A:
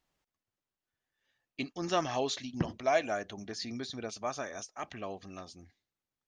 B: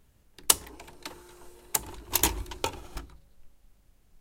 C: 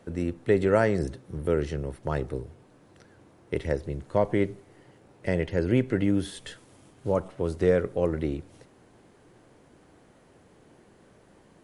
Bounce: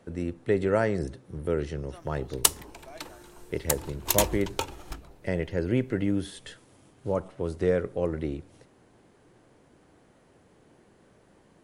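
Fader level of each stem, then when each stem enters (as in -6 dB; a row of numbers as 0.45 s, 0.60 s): -20.0 dB, 0.0 dB, -2.5 dB; 0.00 s, 1.95 s, 0.00 s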